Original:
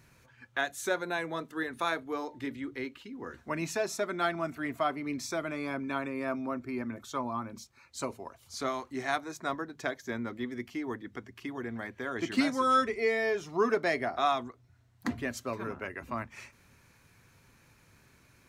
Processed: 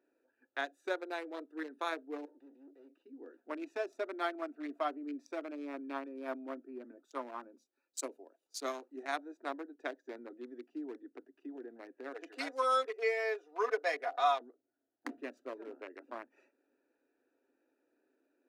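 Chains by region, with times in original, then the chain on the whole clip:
2.25–3.06 s: valve stage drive 44 dB, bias 0.65 + compression 2.5:1, threshold -48 dBFS
6.04–9.03 s: treble shelf 5.3 kHz +10.5 dB + three bands expanded up and down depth 40%
12.13–14.41 s: high-pass 430 Hz 24 dB/octave + comb 4.1 ms, depth 71%
whole clip: local Wiener filter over 41 samples; elliptic high-pass 280 Hz, stop band 40 dB; trim -4 dB

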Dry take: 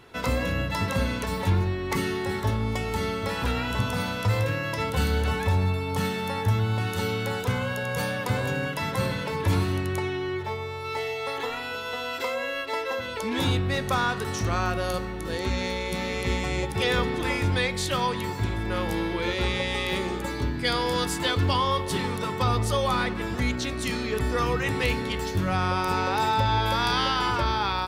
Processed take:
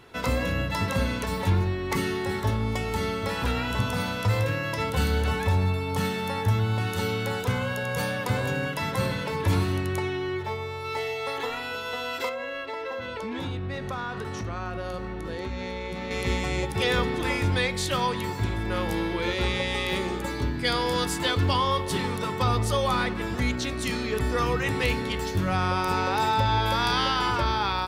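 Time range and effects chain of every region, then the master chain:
12.29–16.11 s: low-pass 2.6 kHz 6 dB/octave + compression 4:1, threshold -29 dBFS
whole clip: none

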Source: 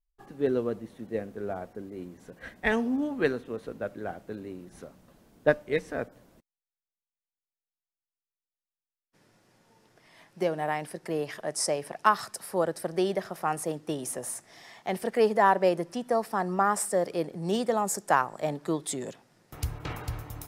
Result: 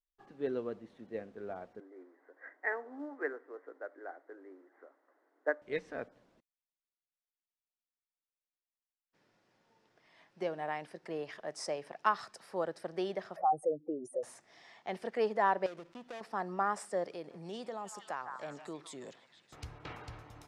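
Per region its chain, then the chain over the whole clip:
1.80–5.62 s: Chebyshev band-pass 280–2000 Hz, order 5 + tilt EQ +2 dB/octave + companded quantiser 8-bit
13.36–14.23 s: spectral contrast enhancement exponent 3 + peaking EQ 600 Hz +12.5 dB 1.1 oct
15.66–16.21 s: dead-time distortion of 0.27 ms + compression 5:1, threshold -32 dBFS + transformer saturation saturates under 870 Hz
17.10–19.56 s: treble shelf 4.5 kHz +5.5 dB + repeats whose band climbs or falls 155 ms, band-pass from 1.2 kHz, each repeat 0.7 oct, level -7.5 dB + compression 2:1, threshold -34 dBFS
whole clip: low-pass 5 kHz 12 dB/octave; bass shelf 180 Hz -9.5 dB; trim -7 dB

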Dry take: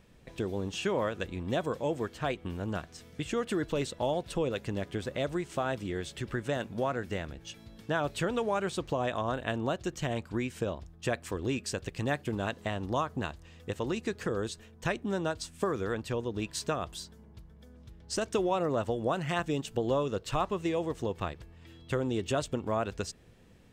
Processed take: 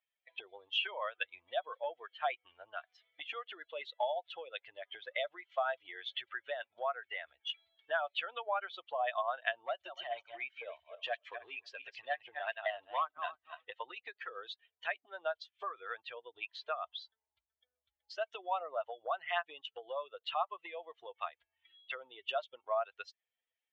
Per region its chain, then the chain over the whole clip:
9.66–13.68 s: backward echo that repeats 144 ms, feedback 44%, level -7 dB + low-pass 9.6 kHz + overload inside the chain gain 25 dB
16.44–17.02 s: treble shelf 5.7 kHz -10.5 dB + upward compressor, threshold -43 dBFS
whole clip: expander on every frequency bin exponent 2; compression 6:1, threshold -47 dBFS; elliptic band-pass 660–3300 Hz, stop band 50 dB; trim +17.5 dB

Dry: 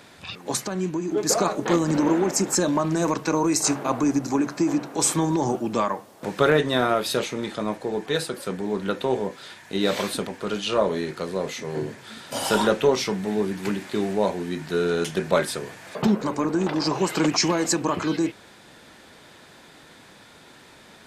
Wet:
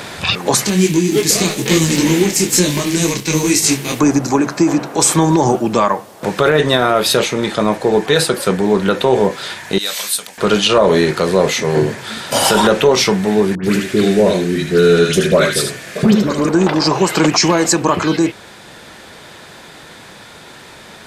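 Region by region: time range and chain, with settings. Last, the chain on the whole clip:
0.65–3.99 s: formants flattened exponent 0.6 + high-order bell 950 Hz -12.5 dB + detune thickener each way 38 cents
9.78–10.38 s: pre-emphasis filter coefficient 0.97 + band-stop 370 Hz, Q 5.9 + doubling 23 ms -14 dB
13.55–16.49 s: peaking EQ 890 Hz -12.5 dB 0.7 oct + phase dispersion highs, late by 90 ms, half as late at 1.7 kHz + delay 76 ms -6.5 dB
whole clip: gain riding 2 s; peaking EQ 270 Hz -4.5 dB 0.48 oct; loudness maximiser +13.5 dB; trim -1 dB

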